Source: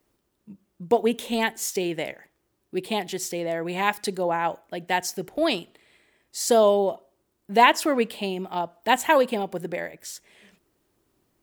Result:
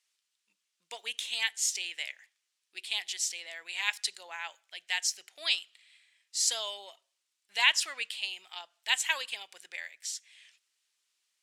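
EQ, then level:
flat-topped band-pass 4,700 Hz, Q 0.75
+2.0 dB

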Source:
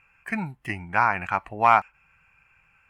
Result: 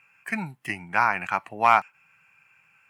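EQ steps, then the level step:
high-pass filter 120 Hz 24 dB per octave
high-shelf EQ 2,700 Hz +8.5 dB
−2.0 dB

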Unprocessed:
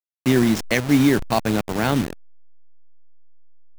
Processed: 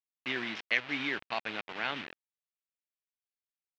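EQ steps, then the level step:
resonant band-pass 2,700 Hz, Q 1.5
high-frequency loss of the air 220 metres
0.0 dB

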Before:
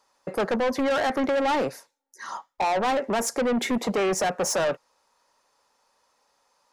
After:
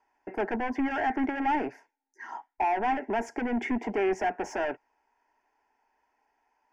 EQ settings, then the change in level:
high-frequency loss of the air 210 metres
phaser with its sweep stopped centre 800 Hz, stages 8
0.0 dB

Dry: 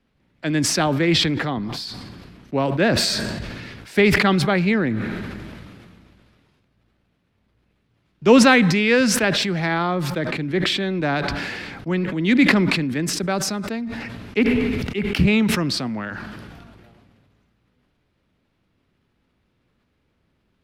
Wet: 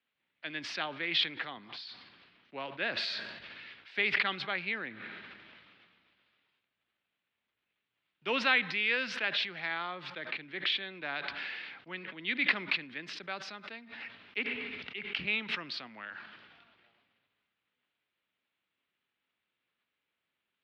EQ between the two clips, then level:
resonant band-pass 3,400 Hz, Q 1.4
high-frequency loss of the air 330 metres
0.0 dB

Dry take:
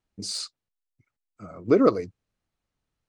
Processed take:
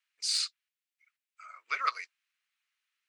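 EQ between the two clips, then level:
high-pass filter 1,300 Hz 24 dB per octave
parametric band 2,400 Hz +9.5 dB 1.2 octaves
0.0 dB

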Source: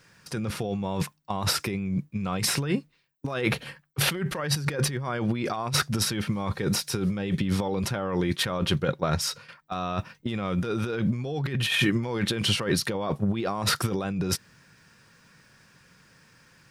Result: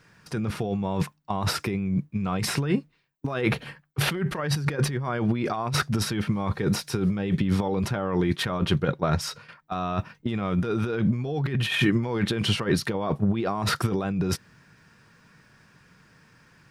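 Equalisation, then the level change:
high-shelf EQ 3,000 Hz −8.5 dB
notch filter 530 Hz, Q 12
+2.5 dB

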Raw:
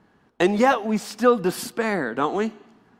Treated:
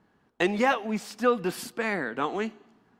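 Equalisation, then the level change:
dynamic equaliser 2,400 Hz, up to +7 dB, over −40 dBFS, Q 1.3
−6.5 dB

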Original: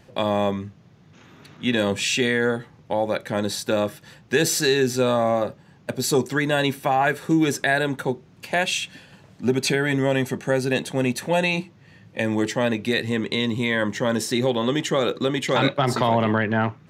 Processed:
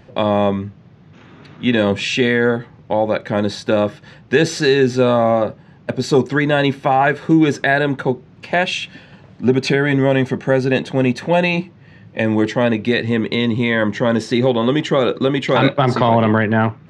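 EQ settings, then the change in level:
head-to-tape spacing loss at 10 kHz 32 dB
high-shelf EQ 2,800 Hz +10 dB
+7.5 dB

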